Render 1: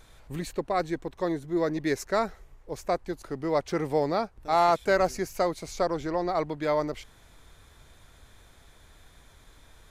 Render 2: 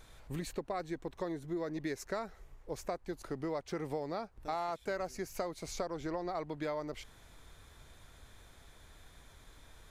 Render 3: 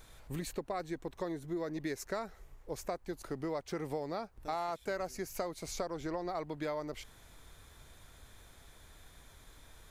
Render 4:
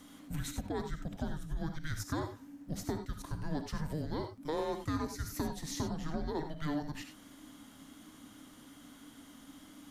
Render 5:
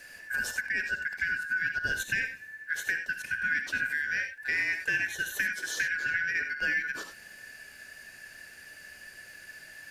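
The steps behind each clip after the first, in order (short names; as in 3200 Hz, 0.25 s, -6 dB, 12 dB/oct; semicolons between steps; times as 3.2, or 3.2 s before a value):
compressor 6:1, threshold -32 dBFS, peak gain reduction 13.5 dB; gain -2.5 dB
high shelf 9700 Hz +7 dB
frequency shift -310 Hz; non-linear reverb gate 0.11 s rising, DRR 6 dB; gain +1 dB
four-band scrambler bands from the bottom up 2143; gain +5.5 dB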